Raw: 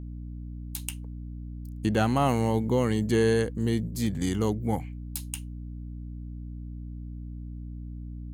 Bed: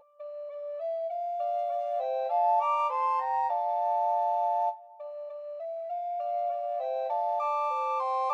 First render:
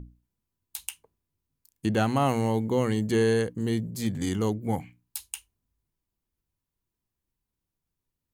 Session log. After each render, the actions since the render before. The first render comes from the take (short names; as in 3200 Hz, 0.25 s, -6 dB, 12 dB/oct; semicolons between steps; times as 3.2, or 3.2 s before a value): notches 60/120/180/240/300 Hz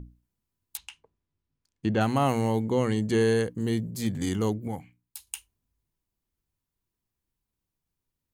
0.77–2.01 air absorption 130 m; 2.62–3.2 LPF 10000 Hz; 4.68–5.27 gain -6.5 dB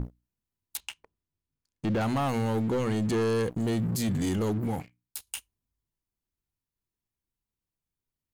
sample leveller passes 3; limiter -22.5 dBFS, peak gain reduction 11 dB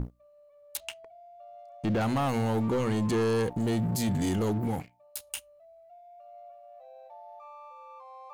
add bed -18.5 dB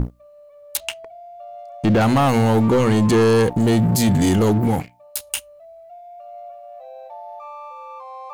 gain +11.5 dB